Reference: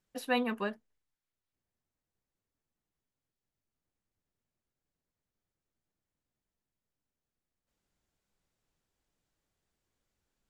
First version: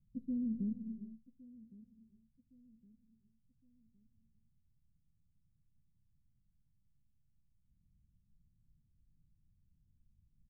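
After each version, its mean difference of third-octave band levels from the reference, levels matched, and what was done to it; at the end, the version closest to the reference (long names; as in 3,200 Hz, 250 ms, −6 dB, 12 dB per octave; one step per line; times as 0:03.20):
18.5 dB: inverse Chebyshev low-pass filter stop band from 780 Hz, stop band 70 dB
brickwall limiter −47.5 dBFS, peak gain reduction 7.5 dB
on a send: repeating echo 1,113 ms, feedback 40%, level −20 dB
on the sum: reverb whose tail is shaped and stops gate 460 ms rising, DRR 9.5 dB
level +16 dB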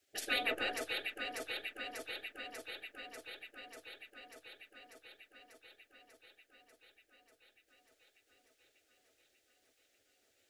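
11.0 dB: gate on every frequency bin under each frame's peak −15 dB weak
high-shelf EQ 3,800 Hz −6 dB
phaser with its sweep stopped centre 420 Hz, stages 4
on a send: delay that swaps between a low-pass and a high-pass 296 ms, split 1,900 Hz, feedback 86%, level −3 dB
on the sum: level +14.5 dB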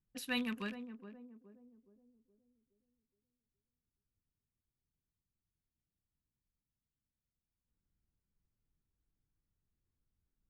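6.0 dB: loose part that buzzes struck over −50 dBFS, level −33 dBFS
guitar amp tone stack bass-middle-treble 6-0-2
low-pass that shuts in the quiet parts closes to 1,000 Hz, open at −57 dBFS
feedback echo with a band-pass in the loop 419 ms, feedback 47%, band-pass 350 Hz, level −8.5 dB
level +15 dB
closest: third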